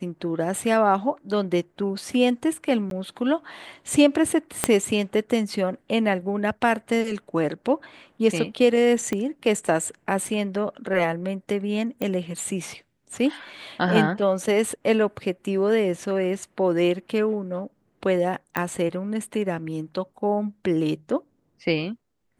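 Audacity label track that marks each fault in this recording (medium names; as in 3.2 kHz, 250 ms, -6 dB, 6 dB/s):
2.900000	2.910000	dropout 12 ms
4.640000	4.640000	pop -3 dBFS
9.130000	9.130000	pop -14 dBFS
12.020000	12.020000	pop -15 dBFS
18.570000	18.570000	pop -11 dBFS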